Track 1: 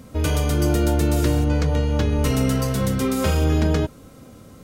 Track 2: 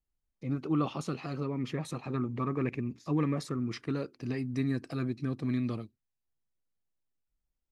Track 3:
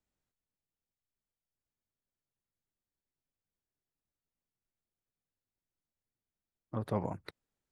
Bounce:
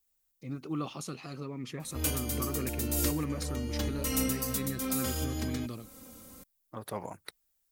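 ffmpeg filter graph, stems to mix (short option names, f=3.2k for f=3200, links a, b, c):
-filter_complex "[0:a]aecho=1:1:3.8:0.58,adelay=1800,volume=-10dB[a];[1:a]volume=-5dB,asplit=2[b][c];[2:a]lowshelf=f=330:g=-10.5,volume=0.5dB,asplit=3[d][e][f];[d]atrim=end=1.11,asetpts=PTS-STARTPTS,afade=t=out:st=1.106:d=0.004:c=hsin[g];[e]atrim=start=1.11:end=2,asetpts=PTS-STARTPTS,volume=0[h];[f]atrim=start=2,asetpts=PTS-STARTPTS,afade=t=in:d=0.004:c=hsin[i];[g][h][i]concat=n=3:v=0:a=1[j];[c]apad=whole_len=283878[k];[a][k]sidechaincompress=threshold=-40dB:ratio=10:attack=29:release=390[l];[l][b][j]amix=inputs=3:normalize=0,aemphasis=mode=production:type=75fm"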